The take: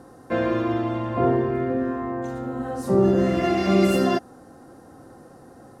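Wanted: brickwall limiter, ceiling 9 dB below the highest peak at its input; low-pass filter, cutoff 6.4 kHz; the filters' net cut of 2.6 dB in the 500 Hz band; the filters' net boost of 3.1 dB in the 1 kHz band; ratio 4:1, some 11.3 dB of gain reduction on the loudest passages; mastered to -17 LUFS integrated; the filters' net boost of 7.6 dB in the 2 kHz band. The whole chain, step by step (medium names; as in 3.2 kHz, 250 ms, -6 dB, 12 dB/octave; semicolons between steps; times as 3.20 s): low-pass 6.4 kHz; peaking EQ 500 Hz -5.5 dB; peaking EQ 1 kHz +4.5 dB; peaking EQ 2 kHz +8.5 dB; compression 4:1, threshold -29 dBFS; trim +17.5 dB; peak limiter -8.5 dBFS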